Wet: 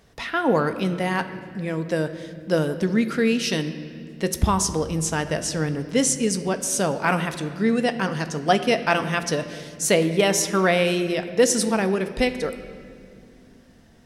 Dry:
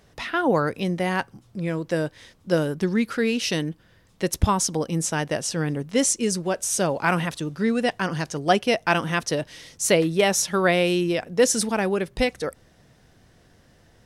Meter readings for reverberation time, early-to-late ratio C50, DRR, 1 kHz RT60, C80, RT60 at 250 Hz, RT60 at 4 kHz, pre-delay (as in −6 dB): 2.4 s, 11.0 dB, 8.0 dB, 1.9 s, 12.0 dB, 4.5 s, 1.7 s, 4 ms